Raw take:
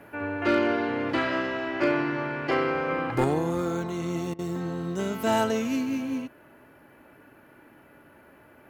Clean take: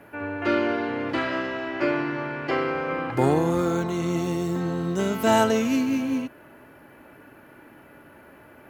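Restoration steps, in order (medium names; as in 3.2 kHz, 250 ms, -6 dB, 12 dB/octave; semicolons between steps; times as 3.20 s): clip repair -15 dBFS; interpolate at 4.34 s, 47 ms; gain correction +4.5 dB, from 3.24 s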